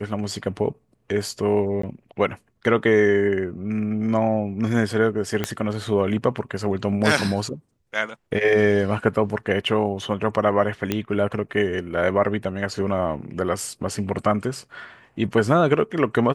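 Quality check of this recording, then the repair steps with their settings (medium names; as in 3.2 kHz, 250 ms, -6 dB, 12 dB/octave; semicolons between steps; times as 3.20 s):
1.82–1.83 s: dropout 14 ms
5.44 s: pop -8 dBFS
10.92 s: pop -8 dBFS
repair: de-click; interpolate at 1.82 s, 14 ms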